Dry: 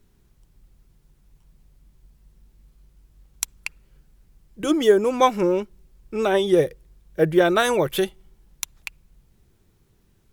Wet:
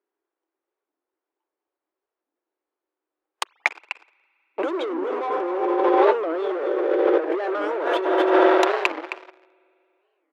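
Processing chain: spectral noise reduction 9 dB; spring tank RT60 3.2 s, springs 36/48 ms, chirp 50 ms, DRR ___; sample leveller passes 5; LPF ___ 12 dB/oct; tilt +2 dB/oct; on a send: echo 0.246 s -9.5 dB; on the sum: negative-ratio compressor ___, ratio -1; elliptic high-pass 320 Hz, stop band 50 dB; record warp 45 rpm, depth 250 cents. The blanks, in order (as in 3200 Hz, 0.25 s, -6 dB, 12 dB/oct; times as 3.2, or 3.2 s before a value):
9 dB, 1300 Hz, -21 dBFS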